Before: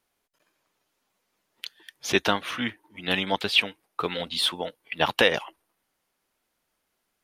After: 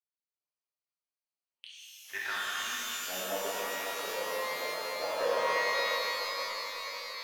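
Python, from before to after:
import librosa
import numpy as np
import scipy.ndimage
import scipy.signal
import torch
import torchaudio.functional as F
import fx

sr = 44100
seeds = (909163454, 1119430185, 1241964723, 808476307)

p1 = fx.wiener(x, sr, points=25)
p2 = fx.filter_sweep_bandpass(p1, sr, from_hz=5100.0, to_hz=560.0, start_s=1.11, end_s=3.3, q=4.1)
p3 = 10.0 ** (-23.0 / 20.0) * np.tanh(p2 / 10.0 ** (-23.0 / 20.0))
p4 = p3 + fx.echo_feedback(p3, sr, ms=549, feedback_pct=56, wet_db=-13.0, dry=0)
p5 = fx.rev_shimmer(p4, sr, seeds[0], rt60_s=3.8, semitones=12, shimmer_db=-2, drr_db=-8.0)
y = F.gain(torch.from_numpy(p5), -6.5).numpy()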